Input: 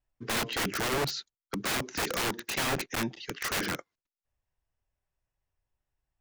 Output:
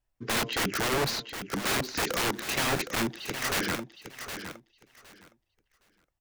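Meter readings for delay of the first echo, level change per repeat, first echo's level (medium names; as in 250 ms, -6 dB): 764 ms, -15.0 dB, -9.5 dB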